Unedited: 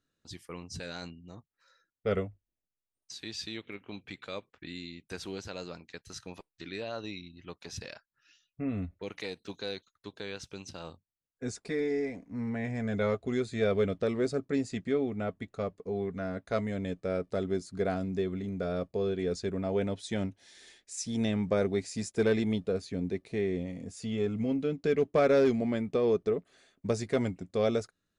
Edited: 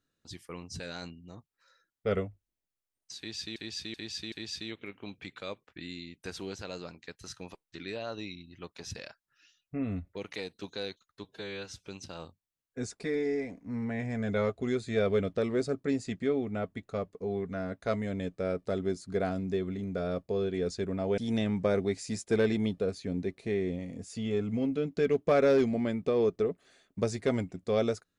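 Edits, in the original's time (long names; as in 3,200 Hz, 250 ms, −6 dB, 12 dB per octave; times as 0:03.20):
0:03.18–0:03.56: repeat, 4 plays
0:10.10–0:10.52: time-stretch 1.5×
0:19.83–0:21.05: remove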